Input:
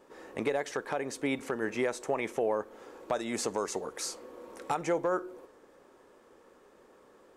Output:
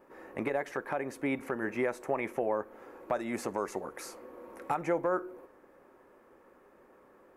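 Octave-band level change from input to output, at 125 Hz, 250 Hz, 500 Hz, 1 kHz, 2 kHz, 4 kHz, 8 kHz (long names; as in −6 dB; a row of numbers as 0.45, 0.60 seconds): 0.0, 0.0, −1.5, 0.0, −0.5, −10.5, −10.0 decibels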